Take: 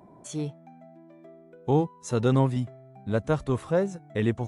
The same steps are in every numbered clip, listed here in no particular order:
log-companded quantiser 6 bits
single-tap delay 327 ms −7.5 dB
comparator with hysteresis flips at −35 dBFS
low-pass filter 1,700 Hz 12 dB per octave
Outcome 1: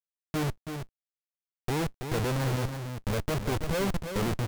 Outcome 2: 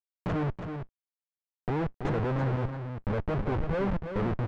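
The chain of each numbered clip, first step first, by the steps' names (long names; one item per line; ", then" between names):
low-pass filter, then comparator with hysteresis, then single-tap delay, then log-companded quantiser
comparator with hysteresis, then single-tap delay, then log-companded quantiser, then low-pass filter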